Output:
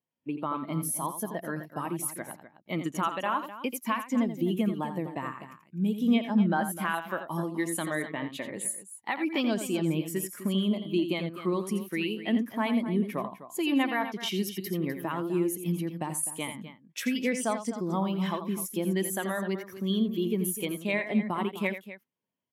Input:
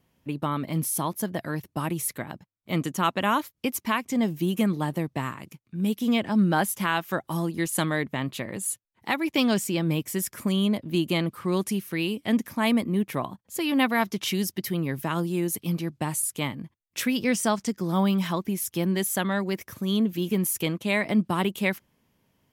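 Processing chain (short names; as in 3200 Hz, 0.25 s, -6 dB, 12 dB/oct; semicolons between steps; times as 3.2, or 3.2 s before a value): HPF 200 Hz 6 dB/oct; low shelf 300 Hz -6 dB; compressor 2.5:1, threshold -31 dBFS, peak gain reduction 8.5 dB; on a send: loudspeakers at several distances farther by 29 m -7 dB, 87 m -9 dB; on the sum: spectral expander 1.5:1; gain +2 dB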